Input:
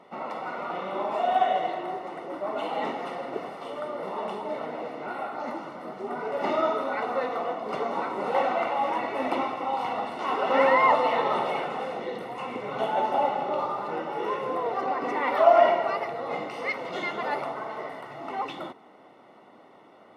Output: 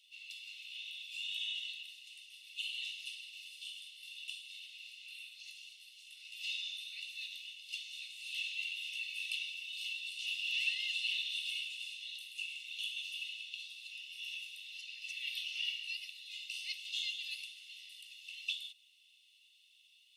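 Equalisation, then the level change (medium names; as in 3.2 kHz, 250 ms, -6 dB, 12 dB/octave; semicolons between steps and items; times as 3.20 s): rippled Chebyshev high-pass 2.6 kHz, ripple 3 dB; +7.0 dB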